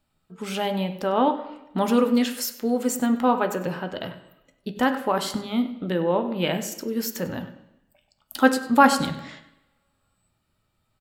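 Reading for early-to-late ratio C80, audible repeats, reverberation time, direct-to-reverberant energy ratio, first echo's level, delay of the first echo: 12.0 dB, 1, 0.85 s, 6.5 dB, −16.5 dB, 98 ms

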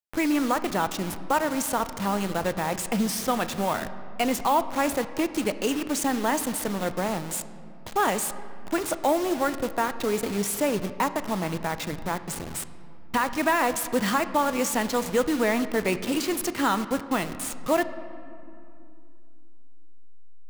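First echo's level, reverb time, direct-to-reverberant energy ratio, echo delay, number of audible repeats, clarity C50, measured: no echo audible, 2.6 s, 11.0 dB, no echo audible, no echo audible, 13.0 dB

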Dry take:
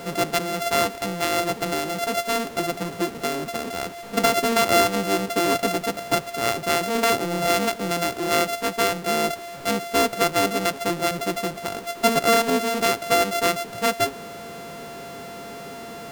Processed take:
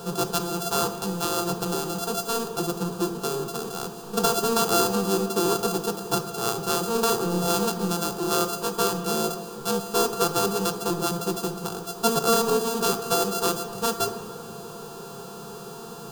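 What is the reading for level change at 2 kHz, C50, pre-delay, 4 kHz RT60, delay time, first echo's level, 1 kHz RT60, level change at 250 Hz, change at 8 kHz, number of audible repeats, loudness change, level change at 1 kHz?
−10.0 dB, 9.0 dB, 21 ms, 1.4 s, no echo audible, no echo audible, 2.9 s, −1.0 dB, +1.0 dB, no echo audible, −2.5 dB, −4.0 dB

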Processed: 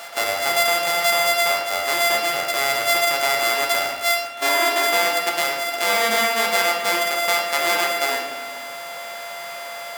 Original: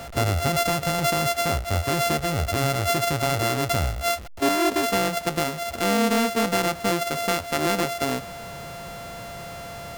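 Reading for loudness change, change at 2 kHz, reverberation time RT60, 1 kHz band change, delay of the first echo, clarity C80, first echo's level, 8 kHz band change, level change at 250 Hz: +4.5 dB, +9.0 dB, 1.3 s, +3.5 dB, no echo audible, 5.5 dB, no echo audible, +5.0 dB, −10.5 dB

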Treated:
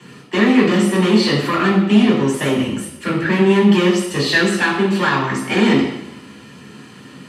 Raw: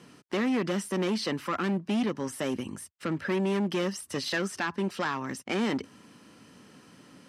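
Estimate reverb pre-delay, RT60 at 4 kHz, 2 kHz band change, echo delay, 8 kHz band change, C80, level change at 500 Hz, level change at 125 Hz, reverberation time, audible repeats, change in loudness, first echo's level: 3 ms, 0.90 s, +15.5 dB, no echo audible, +10.5 dB, 7.0 dB, +14.0 dB, +15.5 dB, 0.90 s, no echo audible, +14.5 dB, no echo audible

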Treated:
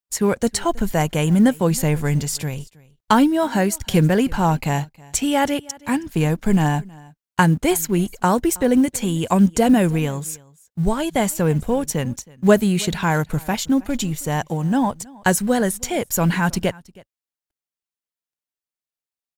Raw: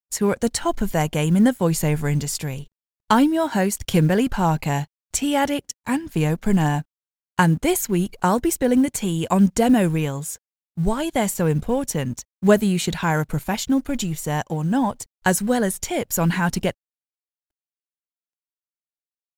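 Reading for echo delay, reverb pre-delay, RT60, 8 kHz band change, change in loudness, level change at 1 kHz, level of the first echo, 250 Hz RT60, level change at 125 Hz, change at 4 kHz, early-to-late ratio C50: 320 ms, no reverb audible, no reverb audible, +1.5 dB, +1.5 dB, +1.5 dB, −23.5 dB, no reverb audible, +1.5 dB, +1.5 dB, no reverb audible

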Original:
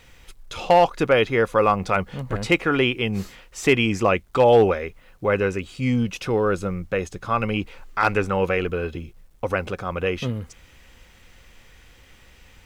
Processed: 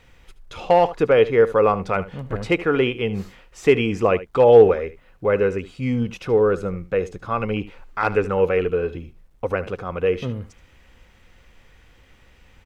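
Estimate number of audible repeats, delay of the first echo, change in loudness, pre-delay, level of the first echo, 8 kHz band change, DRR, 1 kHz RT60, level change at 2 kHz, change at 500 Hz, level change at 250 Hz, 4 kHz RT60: 1, 75 ms, +2.0 dB, no reverb audible, −16.0 dB, can't be measured, no reverb audible, no reverb audible, −3.0 dB, +4.0 dB, −0.5 dB, no reverb audible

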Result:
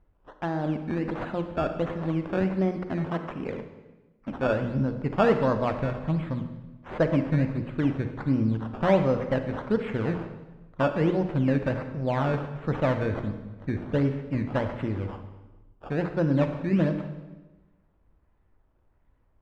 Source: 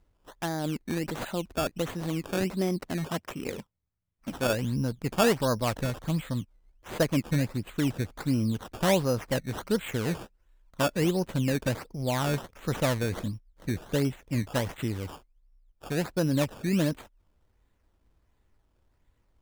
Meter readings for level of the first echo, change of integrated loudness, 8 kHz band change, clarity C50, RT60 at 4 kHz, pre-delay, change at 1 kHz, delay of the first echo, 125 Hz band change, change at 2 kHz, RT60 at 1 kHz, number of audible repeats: no echo audible, +2.0 dB, below −20 dB, 8.5 dB, 1.0 s, 35 ms, +2.5 dB, no echo audible, +2.5 dB, 0.0 dB, 1.1 s, no echo audible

